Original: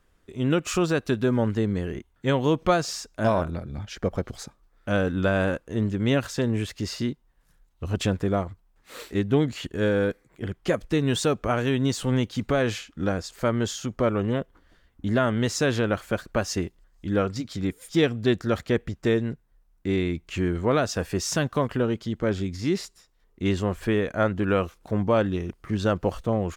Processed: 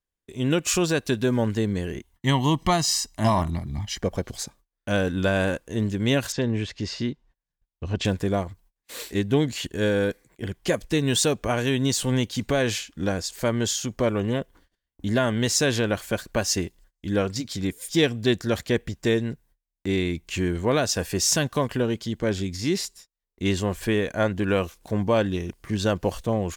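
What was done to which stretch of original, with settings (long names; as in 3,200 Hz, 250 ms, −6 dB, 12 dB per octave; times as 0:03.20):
0:02.13–0:04.01: comb filter 1 ms, depth 76%
0:06.32–0:08.05: high-frequency loss of the air 140 metres
whole clip: notch filter 1,300 Hz, Q 6.6; noise gate −53 dBFS, range −26 dB; high-shelf EQ 3,500 Hz +10.5 dB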